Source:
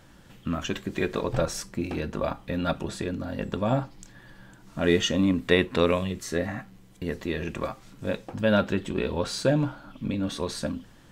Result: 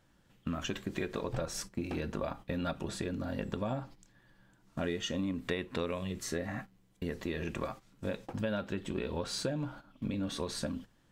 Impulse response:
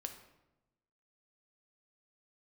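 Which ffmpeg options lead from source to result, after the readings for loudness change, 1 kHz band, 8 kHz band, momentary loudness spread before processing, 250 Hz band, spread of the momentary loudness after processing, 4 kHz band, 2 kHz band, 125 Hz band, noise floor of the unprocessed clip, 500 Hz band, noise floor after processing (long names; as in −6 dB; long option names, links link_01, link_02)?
−9.5 dB, −9.0 dB, −5.5 dB, 11 LU, −9.0 dB, 7 LU, −8.5 dB, −10.0 dB, −8.5 dB, −53 dBFS, −10.5 dB, −67 dBFS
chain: -af "agate=range=-12dB:threshold=-39dB:ratio=16:detection=peak,acompressor=threshold=-29dB:ratio=6,volume=-2.5dB"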